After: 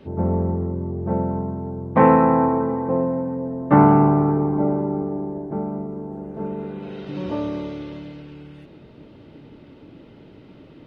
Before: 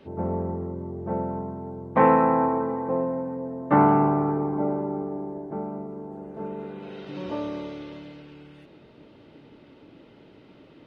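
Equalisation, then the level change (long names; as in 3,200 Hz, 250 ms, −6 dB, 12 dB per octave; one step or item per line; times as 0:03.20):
low-shelf EQ 240 Hz +9 dB
+2.0 dB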